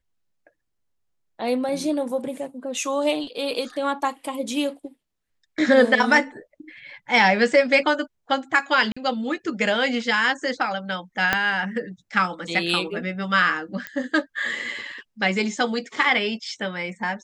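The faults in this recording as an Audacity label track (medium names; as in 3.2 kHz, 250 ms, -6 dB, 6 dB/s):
8.920000	8.960000	dropout 45 ms
11.330000	11.330000	pop -5 dBFS
13.870000	13.870000	pop -15 dBFS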